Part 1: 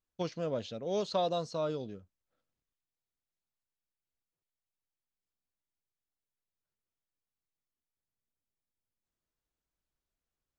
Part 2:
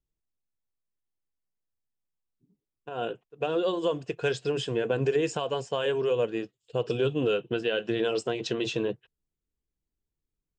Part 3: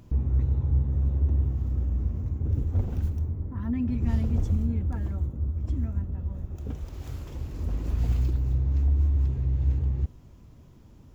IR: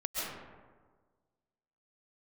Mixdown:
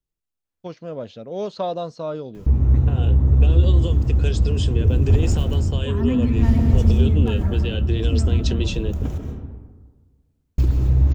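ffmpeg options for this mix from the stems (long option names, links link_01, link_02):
-filter_complex "[0:a]highshelf=frequency=3500:gain=-11.5,adelay=450,volume=0dB[link_01];[1:a]acrossover=split=330|3000[link_02][link_03][link_04];[link_03]acompressor=threshold=-43dB:ratio=6[link_05];[link_02][link_05][link_04]amix=inputs=3:normalize=0,volume=0dB[link_06];[2:a]adelay=2350,volume=-0.5dB,asplit=3[link_07][link_08][link_09];[link_07]atrim=end=9.18,asetpts=PTS-STARTPTS,afade=type=out:start_time=9.176:duration=0.004:curve=hsin[link_10];[link_08]atrim=start=9.18:end=10.58,asetpts=PTS-STARTPTS,volume=0[link_11];[link_09]atrim=start=10.58,asetpts=PTS-STARTPTS,afade=type=in:duration=0.004:curve=hsin[link_12];[link_10][link_11][link_12]concat=n=3:v=0:a=1,asplit=2[link_13][link_14];[link_14]volume=-4dB[link_15];[3:a]atrim=start_sample=2205[link_16];[link_15][link_16]afir=irnorm=-1:irlink=0[link_17];[link_01][link_06][link_13][link_17]amix=inputs=4:normalize=0,dynaudnorm=framelen=270:gausssize=7:maxgain=6dB"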